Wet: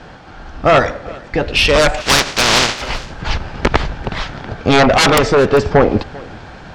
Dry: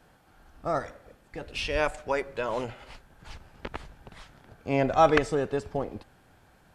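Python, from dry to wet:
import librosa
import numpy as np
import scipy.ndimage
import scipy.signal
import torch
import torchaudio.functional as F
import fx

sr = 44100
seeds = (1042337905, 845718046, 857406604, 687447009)

y = fx.spec_flatten(x, sr, power=0.14, at=(2.0, 2.81), fade=0.02)
y = scipy.signal.sosfilt(scipy.signal.butter(4, 5800.0, 'lowpass', fs=sr, output='sos'), y)
y = fx.fold_sine(y, sr, drive_db=17, ceiling_db=-6.5)
y = y + 10.0 ** (-22.5 / 20.0) * np.pad(y, (int(394 * sr / 1000.0), 0))[:len(y)]
y = fx.rider(y, sr, range_db=3, speed_s=0.5)
y = y * librosa.db_to_amplitude(2.0)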